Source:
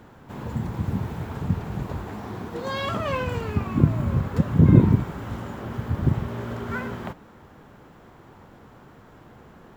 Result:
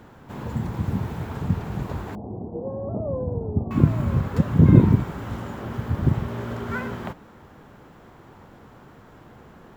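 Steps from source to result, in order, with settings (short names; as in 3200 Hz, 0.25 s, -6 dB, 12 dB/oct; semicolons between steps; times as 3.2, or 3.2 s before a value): 2.15–3.71 steep low-pass 760 Hz 36 dB/oct; gain +1 dB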